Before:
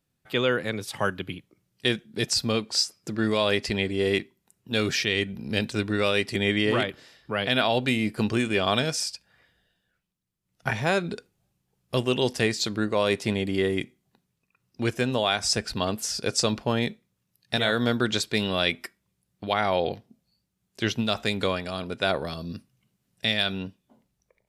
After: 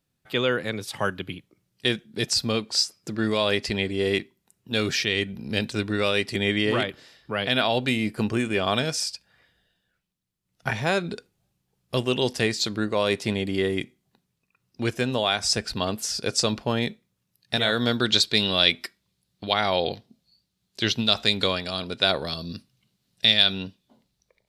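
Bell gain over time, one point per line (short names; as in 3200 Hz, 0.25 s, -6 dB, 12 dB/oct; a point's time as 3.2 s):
bell 4100 Hz 0.86 oct
8.07 s +2 dB
8.33 s -6.5 dB
9.01 s +2.5 dB
17.57 s +2.5 dB
18.04 s +11 dB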